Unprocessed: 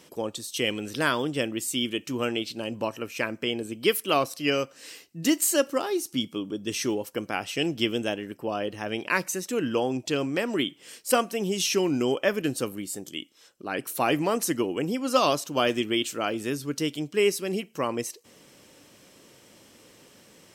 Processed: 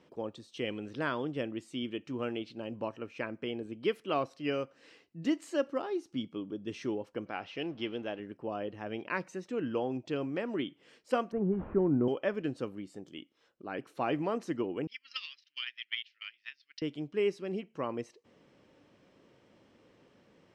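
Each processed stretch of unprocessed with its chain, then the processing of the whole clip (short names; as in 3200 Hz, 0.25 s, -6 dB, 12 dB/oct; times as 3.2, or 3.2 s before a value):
7.26–8.2 G.711 law mismatch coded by mu + LPF 5700 Hz 24 dB/oct + low shelf 310 Hz -8 dB
11.32–12.08 delta modulation 64 kbps, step -43 dBFS + LPF 1500 Hz 24 dB/oct + low shelf 230 Hz +11 dB
14.87–16.82 elliptic band-pass 1900–5200 Hz, stop band 50 dB + transient shaper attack +11 dB, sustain -9 dB
whole clip: LPF 4500 Hz 12 dB/oct; high shelf 2600 Hz -11.5 dB; gain -6.5 dB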